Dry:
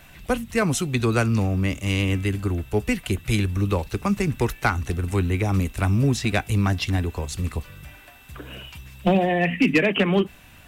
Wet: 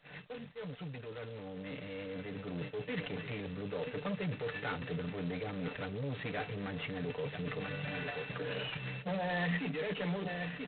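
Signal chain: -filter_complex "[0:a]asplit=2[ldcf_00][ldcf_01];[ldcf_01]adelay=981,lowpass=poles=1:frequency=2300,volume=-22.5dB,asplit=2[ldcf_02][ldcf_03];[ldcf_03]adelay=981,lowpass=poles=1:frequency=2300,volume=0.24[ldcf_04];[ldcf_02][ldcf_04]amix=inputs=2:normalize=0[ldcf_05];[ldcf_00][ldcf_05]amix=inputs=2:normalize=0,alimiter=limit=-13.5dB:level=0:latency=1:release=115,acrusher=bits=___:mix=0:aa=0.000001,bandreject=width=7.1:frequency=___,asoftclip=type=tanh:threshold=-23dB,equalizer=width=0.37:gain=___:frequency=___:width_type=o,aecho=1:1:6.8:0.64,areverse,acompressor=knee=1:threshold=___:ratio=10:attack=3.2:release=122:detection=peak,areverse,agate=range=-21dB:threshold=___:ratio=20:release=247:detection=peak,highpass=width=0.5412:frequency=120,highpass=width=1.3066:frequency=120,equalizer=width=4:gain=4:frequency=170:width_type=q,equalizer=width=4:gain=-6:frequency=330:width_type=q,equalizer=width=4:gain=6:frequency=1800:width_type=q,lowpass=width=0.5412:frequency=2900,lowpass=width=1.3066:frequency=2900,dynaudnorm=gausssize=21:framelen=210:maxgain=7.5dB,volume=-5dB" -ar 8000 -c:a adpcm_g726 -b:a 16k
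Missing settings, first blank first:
9, 1100, 14.5, 480, -36dB, -46dB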